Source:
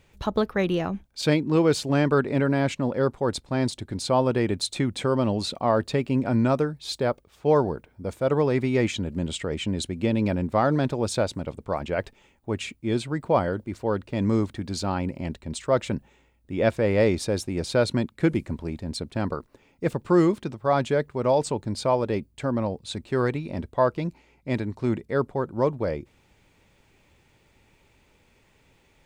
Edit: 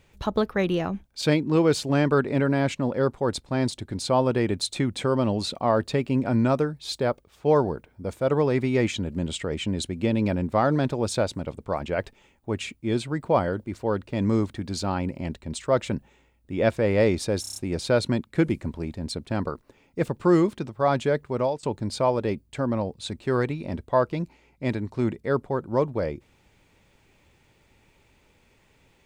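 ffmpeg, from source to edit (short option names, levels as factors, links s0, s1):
-filter_complex "[0:a]asplit=7[s0][s1][s2][s3][s4][s5][s6];[s0]atrim=end=17.442[s7];[s1]atrim=start=17.408:end=17.442[s8];[s2]atrim=start=17.408:end=17.442[s9];[s3]atrim=start=17.408:end=17.442[s10];[s4]atrim=start=17.408:end=17.442[s11];[s5]atrim=start=17.408:end=21.48,asetpts=PTS-STARTPTS,afade=t=out:st=3.812:d=0.26:silence=0.0707946[s12];[s6]atrim=start=21.48,asetpts=PTS-STARTPTS,afade=t=in:d=0.004:c=hsin:silence=0.0707946[s13];[s7][s8]acrossfade=d=0.004:c1=hsin:c2=hsin[s14];[s14][s9]acrossfade=d=0.004:c1=hsin:c2=hsin[s15];[s15][s10]acrossfade=d=0.004:c1=hsin:c2=hsin[s16];[s16][s11]acrossfade=d=0.004:c1=hsin:c2=hsin[s17];[s12][s13]concat=n=2:v=0:a=1[s18];[s17][s18]acrossfade=d=0.004:c1=hsin:c2=hsin"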